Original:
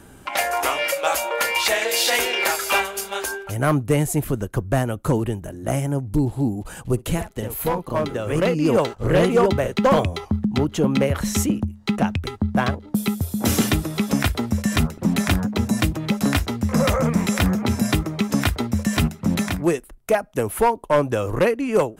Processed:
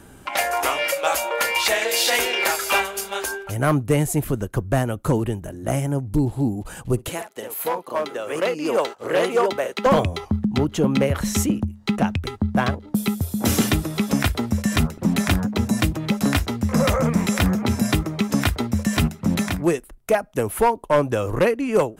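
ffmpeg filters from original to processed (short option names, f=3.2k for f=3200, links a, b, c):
-filter_complex "[0:a]asettb=1/sr,asplit=3[a][b][c];[a]atrim=end=7.094[d];[b]atrim=start=7.09:end=9.86,asetpts=PTS-STARTPTS,afade=t=in:d=0.004:c=qsin,afade=t=out:st=2.766:d=0.004:c=qsin,highpass=420[e];[c]atrim=start=9.856[f];[d][e]acrossfade=d=0.004:c1=hsin:c2=qsin[g];[g][f]acrossfade=d=0.004:c1=qsin:c2=hsin"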